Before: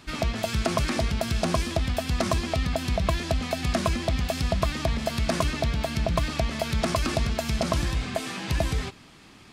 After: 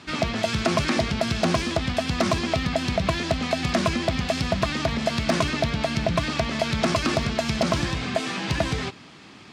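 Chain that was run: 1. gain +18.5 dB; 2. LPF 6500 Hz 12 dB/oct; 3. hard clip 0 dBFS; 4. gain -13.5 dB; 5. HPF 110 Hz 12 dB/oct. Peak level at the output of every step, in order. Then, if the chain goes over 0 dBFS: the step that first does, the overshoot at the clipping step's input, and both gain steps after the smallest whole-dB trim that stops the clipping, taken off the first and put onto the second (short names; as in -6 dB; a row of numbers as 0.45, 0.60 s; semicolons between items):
+8.0, +8.0, 0.0, -13.5, -9.0 dBFS; step 1, 8.0 dB; step 1 +10.5 dB, step 4 -5.5 dB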